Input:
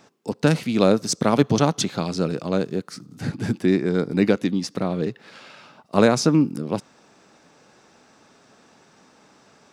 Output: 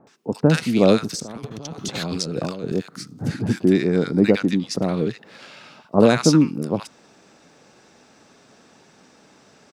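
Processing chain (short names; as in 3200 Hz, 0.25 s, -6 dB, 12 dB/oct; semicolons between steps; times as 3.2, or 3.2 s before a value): 1.02–2.72 negative-ratio compressor -32 dBFS, ratio -1; bands offset in time lows, highs 70 ms, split 1100 Hz; gain +2.5 dB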